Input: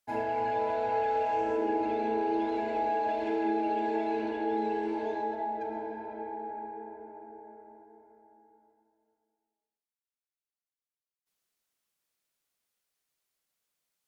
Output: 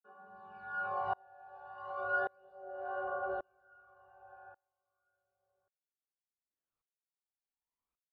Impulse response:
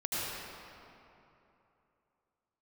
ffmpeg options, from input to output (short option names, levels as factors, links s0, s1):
-filter_complex "[0:a]asplit=2[s0][s1];[1:a]atrim=start_sample=2205[s2];[s1][s2]afir=irnorm=-1:irlink=0,volume=0.398[s3];[s0][s3]amix=inputs=2:normalize=0,asetrate=76440,aresample=44100,aphaser=in_gain=1:out_gain=1:delay=1.2:decay=0.6:speed=0.34:type=sinusoidal,lowpass=1100,acrossover=split=160[s4][s5];[s4]adelay=220[s6];[s6][s5]amix=inputs=2:normalize=0,aeval=exprs='val(0)*pow(10,-34*if(lt(mod(-0.88*n/s,1),2*abs(-0.88)/1000),1-mod(-0.88*n/s,1)/(2*abs(-0.88)/1000),(mod(-0.88*n/s,1)-2*abs(-0.88)/1000)/(1-2*abs(-0.88)/1000))/20)':c=same,volume=0.841"